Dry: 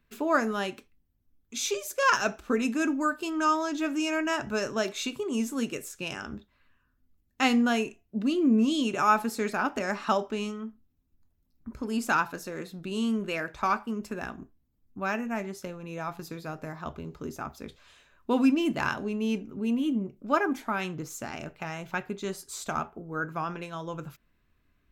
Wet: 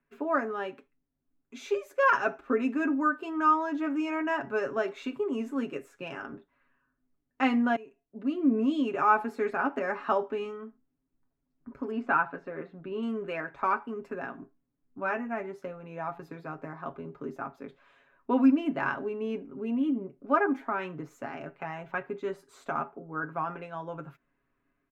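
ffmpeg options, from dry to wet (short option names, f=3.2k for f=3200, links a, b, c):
-filter_complex "[0:a]asettb=1/sr,asplit=3[a][b][c];[a]atrim=end=11.914[d];[b]atrim=start=11.91:end=13.03,asetpts=PTS-STARTPTS,afade=t=in:d=0.004:c=qsin,afade=t=out:st=1.116:d=0.004:c=qsin,lowpass=2.9k[e];[c]atrim=start=13.026[f];[d][e]acrossfade=d=0.004:c1=hsin:c2=qsin[g];[g][f]acrossfade=d=0.004:c1=qsin:c2=hsin,asettb=1/sr,asplit=3[h][i][j];[h]atrim=end=14.314[k];[i]atrim=start=14.31:end=15.17,asetpts=PTS-STARTPTS,afade=t=in:d=0.004:c=qsin,afade=t=out:st=0.856:d=0.004:c=qsin,asplit=2[l][m];[m]adelay=17,volume=-8dB[n];[l][n]amix=inputs=2:normalize=0,atrim=end_sample=37926[o];[j]atrim=start=15.166[p];[k][o]acrossfade=d=0.004:c1=hsin:c2=qsin[q];[q][p]acrossfade=d=0.004:c1=qsin:c2=hsin,asplit=2[r][s];[r]atrim=end=7.76,asetpts=PTS-STARTPTS,afade=t=out:st=7.756:d=0.004:c=hsin:silence=0.0841395[t];[s]atrim=start=7.76,asetpts=PTS-STARTPTS,afade=t=in:d=0.79:silence=0.0841395[u];[t][u]concat=n=2:v=0:a=1,acrossover=split=190 2300:gain=0.224 1 0.0794[v][w][x];[v][w][x]amix=inputs=3:normalize=0,aecho=1:1:7.3:0.63,dynaudnorm=f=650:g=3:m=3dB,volume=-4dB"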